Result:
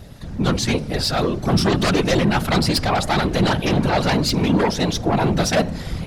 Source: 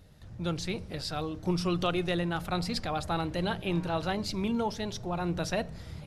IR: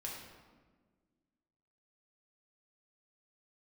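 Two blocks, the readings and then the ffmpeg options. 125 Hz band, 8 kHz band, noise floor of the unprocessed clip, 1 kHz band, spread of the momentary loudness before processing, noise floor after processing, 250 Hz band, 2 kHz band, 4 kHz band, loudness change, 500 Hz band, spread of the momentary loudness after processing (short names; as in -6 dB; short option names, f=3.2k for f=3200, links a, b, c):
+13.0 dB, +16.0 dB, -47 dBFS, +12.0 dB, 6 LU, -31 dBFS, +12.5 dB, +13.0 dB, +13.5 dB, +12.5 dB, +12.0 dB, 4 LU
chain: -af "aeval=exprs='0.188*sin(PI/2*3.55*val(0)/0.188)':c=same,afftfilt=real='hypot(re,im)*cos(2*PI*random(0))':imag='hypot(re,im)*sin(2*PI*random(1))':win_size=512:overlap=0.75,volume=7dB"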